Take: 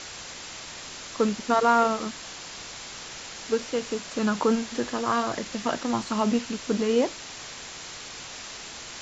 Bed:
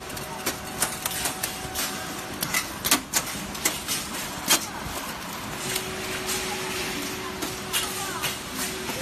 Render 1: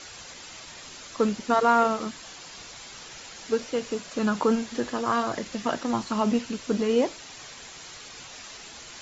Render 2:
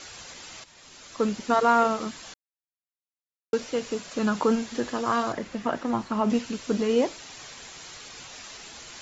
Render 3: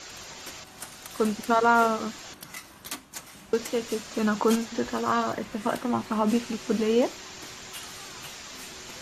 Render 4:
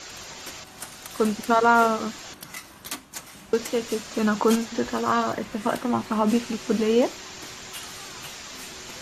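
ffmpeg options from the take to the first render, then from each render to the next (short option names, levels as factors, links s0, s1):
-af "afftdn=nr=7:nf=-41"
-filter_complex "[0:a]asettb=1/sr,asplit=3[s0][s1][s2];[s0]atrim=end=5.324[s3];[s1]atrim=start=5.32:end=6.3,asetpts=PTS-STARTPTS,afade=t=in:d=0.004:c=qsin,afade=t=out:st=0.976:d=0.004:c=qsin,acrossover=split=2500[s4][s5];[s5]acompressor=threshold=0.00282:ratio=4:attack=1:release=60[s6];[s4][s6]amix=inputs=2:normalize=0[s7];[s2]atrim=start=6.296[s8];[s3][s7]acrossfade=d=0.004:c1=hsin:c2=qsin[s9];[s9][s8]acrossfade=d=0.004:c1=qsin:c2=hsin,asplit=4[s10][s11][s12][s13];[s10]atrim=end=0.64,asetpts=PTS-STARTPTS,afade=t=out:st=0.636:d=0.004:c=hsin:silence=0.237137[s14];[s11]atrim=start=0.64:end=2.34,asetpts=PTS-STARTPTS,afade=t=in:d=0.76:silence=0.237137,afade=t=out:st=1.696:d=0.004:c=hsin[s15];[s12]atrim=start=2.34:end=3.53,asetpts=PTS-STARTPTS,volume=0[s16];[s13]atrim=start=3.53,asetpts=PTS-STARTPTS,afade=t=in:d=0.004:c=hsin[s17];[s14][s15][s16][s17]concat=n=4:v=0:a=1"
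-filter_complex "[1:a]volume=0.168[s0];[0:a][s0]amix=inputs=2:normalize=0"
-af "volume=1.33"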